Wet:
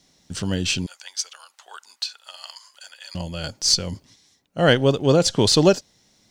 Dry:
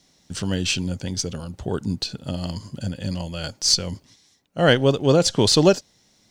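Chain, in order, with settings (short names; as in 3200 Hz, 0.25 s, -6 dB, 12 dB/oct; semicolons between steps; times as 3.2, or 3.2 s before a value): 0.86–3.15 HPF 1000 Hz 24 dB/oct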